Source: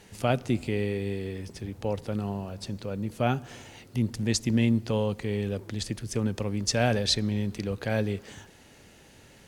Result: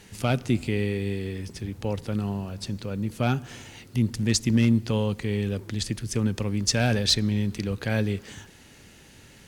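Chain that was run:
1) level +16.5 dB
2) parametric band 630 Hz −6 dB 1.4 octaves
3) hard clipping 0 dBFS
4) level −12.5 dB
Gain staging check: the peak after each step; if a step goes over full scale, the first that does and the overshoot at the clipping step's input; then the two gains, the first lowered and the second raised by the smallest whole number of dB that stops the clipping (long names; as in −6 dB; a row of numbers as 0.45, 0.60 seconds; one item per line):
+7.5, +5.5, 0.0, −12.5 dBFS
step 1, 5.5 dB
step 1 +10.5 dB, step 4 −6.5 dB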